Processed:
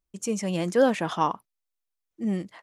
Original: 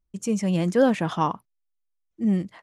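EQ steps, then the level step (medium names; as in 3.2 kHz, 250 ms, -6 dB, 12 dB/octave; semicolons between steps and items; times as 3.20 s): tone controls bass -8 dB, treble +2 dB; 0.0 dB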